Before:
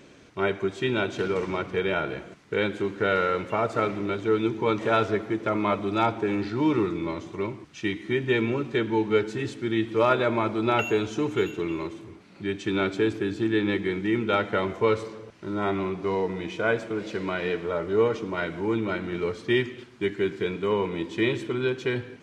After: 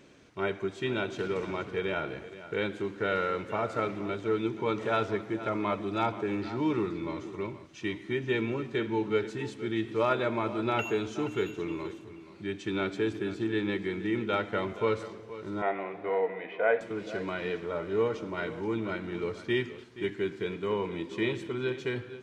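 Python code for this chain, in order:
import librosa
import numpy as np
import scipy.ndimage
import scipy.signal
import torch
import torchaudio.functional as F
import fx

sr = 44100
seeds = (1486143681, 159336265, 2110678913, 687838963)

y = fx.cabinet(x, sr, low_hz=330.0, low_slope=12, high_hz=2800.0, hz=(350.0, 500.0, 720.0, 1100.0, 1900.0), db=(-8, 9, 9, -3, 8), at=(15.62, 16.81))
y = y + 10.0 ** (-14.5 / 20.0) * np.pad(y, (int(476 * sr / 1000.0), 0))[:len(y)]
y = y * 10.0 ** (-5.5 / 20.0)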